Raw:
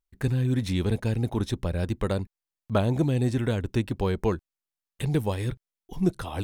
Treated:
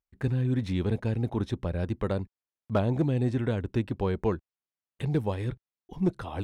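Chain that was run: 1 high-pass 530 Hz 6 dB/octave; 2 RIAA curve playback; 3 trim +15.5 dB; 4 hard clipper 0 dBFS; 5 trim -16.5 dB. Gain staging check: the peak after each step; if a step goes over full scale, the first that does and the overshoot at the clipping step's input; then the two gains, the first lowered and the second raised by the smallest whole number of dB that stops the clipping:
-12.5 dBFS, -11.5 dBFS, +4.0 dBFS, 0.0 dBFS, -16.5 dBFS; step 3, 4.0 dB; step 3 +11.5 dB, step 5 -12.5 dB

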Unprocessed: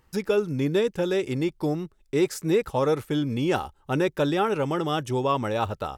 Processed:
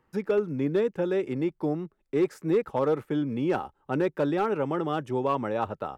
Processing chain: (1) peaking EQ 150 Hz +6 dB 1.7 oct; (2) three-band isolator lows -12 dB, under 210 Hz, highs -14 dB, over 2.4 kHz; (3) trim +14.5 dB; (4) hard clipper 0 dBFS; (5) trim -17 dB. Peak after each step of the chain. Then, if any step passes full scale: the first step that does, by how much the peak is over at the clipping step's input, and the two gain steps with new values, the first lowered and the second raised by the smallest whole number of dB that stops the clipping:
-9.5 dBFS, -10.0 dBFS, +4.5 dBFS, 0.0 dBFS, -17.0 dBFS; step 3, 4.5 dB; step 3 +9.5 dB, step 5 -12 dB

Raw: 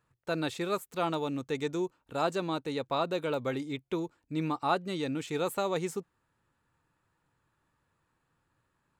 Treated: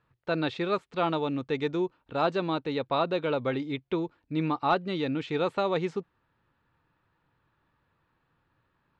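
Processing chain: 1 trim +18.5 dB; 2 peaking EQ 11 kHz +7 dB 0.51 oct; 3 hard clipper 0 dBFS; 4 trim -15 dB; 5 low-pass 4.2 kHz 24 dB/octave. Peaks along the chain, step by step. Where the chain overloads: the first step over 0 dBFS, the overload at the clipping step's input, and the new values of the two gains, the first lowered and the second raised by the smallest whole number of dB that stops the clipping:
+3.5 dBFS, +3.5 dBFS, 0.0 dBFS, -15.0 dBFS, -14.0 dBFS; step 1, 3.5 dB; step 1 +14.5 dB, step 4 -11 dB

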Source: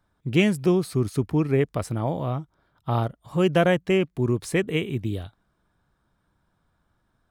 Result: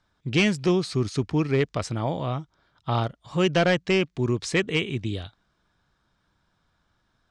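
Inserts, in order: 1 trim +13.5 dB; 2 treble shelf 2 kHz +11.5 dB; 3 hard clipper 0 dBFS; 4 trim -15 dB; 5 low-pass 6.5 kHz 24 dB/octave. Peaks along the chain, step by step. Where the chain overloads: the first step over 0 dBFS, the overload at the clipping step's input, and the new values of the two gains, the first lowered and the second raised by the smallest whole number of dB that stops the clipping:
+5.0 dBFS, +10.0 dBFS, 0.0 dBFS, -15.0 dBFS, -13.5 dBFS; step 1, 10.0 dB; step 1 +3.5 dB, step 4 -5 dB

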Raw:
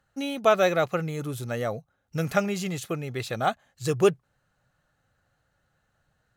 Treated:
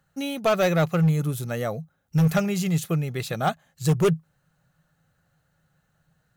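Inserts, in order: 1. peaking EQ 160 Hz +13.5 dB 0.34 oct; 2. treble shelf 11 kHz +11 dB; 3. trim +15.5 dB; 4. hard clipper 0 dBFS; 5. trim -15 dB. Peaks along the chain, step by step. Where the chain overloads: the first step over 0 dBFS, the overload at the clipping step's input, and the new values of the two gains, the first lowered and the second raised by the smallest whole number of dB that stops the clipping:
-7.5 dBFS, -7.0 dBFS, +8.5 dBFS, 0.0 dBFS, -15.0 dBFS; step 3, 8.5 dB; step 3 +6.5 dB, step 5 -6 dB

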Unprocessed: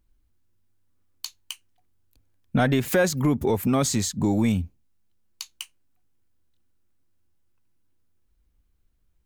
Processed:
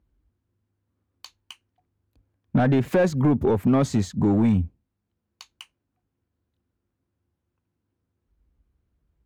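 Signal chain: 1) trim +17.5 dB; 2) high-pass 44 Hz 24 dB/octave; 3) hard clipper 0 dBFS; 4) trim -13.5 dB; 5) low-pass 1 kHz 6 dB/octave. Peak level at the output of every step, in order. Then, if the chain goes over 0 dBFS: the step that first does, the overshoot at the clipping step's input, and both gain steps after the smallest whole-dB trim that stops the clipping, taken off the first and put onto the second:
+7.0 dBFS, +9.5 dBFS, 0.0 dBFS, -13.5 dBFS, -13.5 dBFS; step 1, 9.5 dB; step 1 +7.5 dB, step 4 -3.5 dB

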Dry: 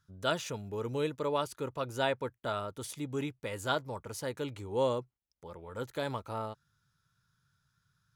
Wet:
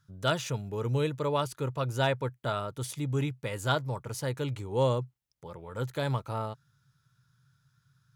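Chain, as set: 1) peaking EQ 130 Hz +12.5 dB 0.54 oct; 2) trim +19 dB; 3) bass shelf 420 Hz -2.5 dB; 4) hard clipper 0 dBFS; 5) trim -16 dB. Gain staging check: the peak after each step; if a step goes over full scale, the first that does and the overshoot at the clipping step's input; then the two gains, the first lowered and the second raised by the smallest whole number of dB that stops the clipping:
-16.0 dBFS, +3.0 dBFS, +3.0 dBFS, 0.0 dBFS, -16.0 dBFS; step 2, 3.0 dB; step 2 +16 dB, step 5 -13 dB

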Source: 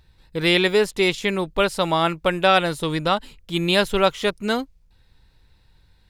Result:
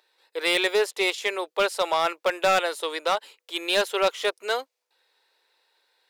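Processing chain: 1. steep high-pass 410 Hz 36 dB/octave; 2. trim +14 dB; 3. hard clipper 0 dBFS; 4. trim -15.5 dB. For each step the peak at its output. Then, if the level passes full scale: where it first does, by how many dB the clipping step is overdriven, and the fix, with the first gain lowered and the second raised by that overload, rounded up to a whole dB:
-4.5 dBFS, +9.5 dBFS, 0.0 dBFS, -15.5 dBFS; step 2, 9.5 dB; step 2 +4 dB, step 4 -5.5 dB

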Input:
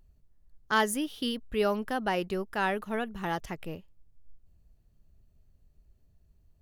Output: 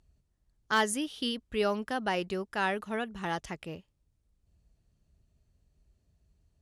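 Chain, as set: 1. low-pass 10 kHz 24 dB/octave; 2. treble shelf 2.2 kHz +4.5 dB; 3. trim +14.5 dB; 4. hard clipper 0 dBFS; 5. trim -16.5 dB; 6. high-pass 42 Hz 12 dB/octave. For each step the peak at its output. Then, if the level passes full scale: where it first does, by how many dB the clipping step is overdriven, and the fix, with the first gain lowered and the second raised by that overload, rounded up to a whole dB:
-13.5 dBFS, -11.0 dBFS, +3.5 dBFS, 0.0 dBFS, -16.5 dBFS, -15.5 dBFS; step 3, 3.5 dB; step 3 +10.5 dB, step 5 -12.5 dB

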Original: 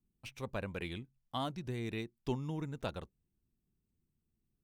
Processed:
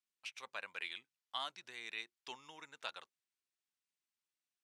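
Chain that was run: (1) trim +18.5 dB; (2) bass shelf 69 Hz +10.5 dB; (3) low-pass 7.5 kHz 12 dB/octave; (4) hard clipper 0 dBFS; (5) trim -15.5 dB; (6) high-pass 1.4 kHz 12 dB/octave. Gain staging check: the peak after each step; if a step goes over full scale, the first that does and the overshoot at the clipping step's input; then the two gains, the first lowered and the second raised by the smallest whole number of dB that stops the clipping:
-3.5 dBFS, -1.5 dBFS, -1.5 dBFS, -1.5 dBFS, -17.0 dBFS, -25.0 dBFS; nothing clips

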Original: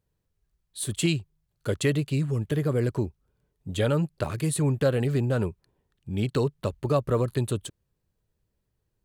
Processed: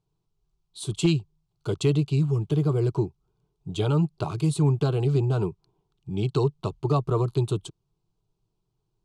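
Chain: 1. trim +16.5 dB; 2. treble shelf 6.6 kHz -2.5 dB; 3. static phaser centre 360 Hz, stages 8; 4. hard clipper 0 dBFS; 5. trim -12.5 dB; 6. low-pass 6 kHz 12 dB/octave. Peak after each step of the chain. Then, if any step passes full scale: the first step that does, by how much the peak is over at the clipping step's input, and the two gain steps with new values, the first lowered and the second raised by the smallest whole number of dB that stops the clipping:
+5.0 dBFS, +5.0 dBFS, +3.5 dBFS, 0.0 dBFS, -12.5 dBFS, -12.5 dBFS; step 1, 3.5 dB; step 1 +12.5 dB, step 5 -8.5 dB

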